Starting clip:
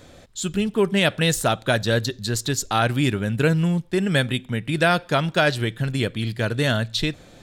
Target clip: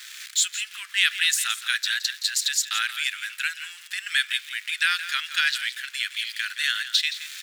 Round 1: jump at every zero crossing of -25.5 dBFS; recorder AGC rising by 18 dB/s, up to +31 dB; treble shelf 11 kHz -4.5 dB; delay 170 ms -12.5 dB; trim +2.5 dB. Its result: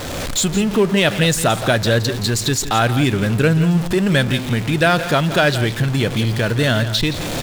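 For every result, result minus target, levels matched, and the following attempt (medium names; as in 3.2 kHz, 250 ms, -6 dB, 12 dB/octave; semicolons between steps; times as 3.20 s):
jump at every zero crossing: distortion +9 dB; 2 kHz band -4.0 dB
jump at every zero crossing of -35.5 dBFS; recorder AGC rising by 18 dB/s, up to +31 dB; treble shelf 11 kHz -4.5 dB; delay 170 ms -12.5 dB; trim +2.5 dB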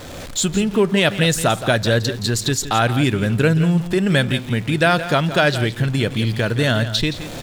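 2 kHz band -4.0 dB
jump at every zero crossing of -35.5 dBFS; recorder AGC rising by 18 dB/s, up to +31 dB; steep high-pass 1.6 kHz 36 dB/octave; treble shelf 11 kHz -4.5 dB; delay 170 ms -12.5 dB; trim +2.5 dB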